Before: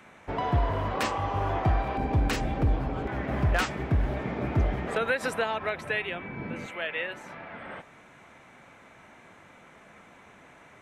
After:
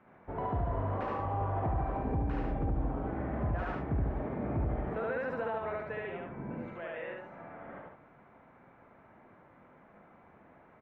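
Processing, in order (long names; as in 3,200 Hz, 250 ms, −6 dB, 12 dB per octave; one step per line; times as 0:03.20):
loudspeakers that aren't time-aligned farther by 25 metres 0 dB, 49 metres −5 dB
brickwall limiter −16.5 dBFS, peak gain reduction 6.5 dB
low-pass filter 1,200 Hz 12 dB per octave
level −7 dB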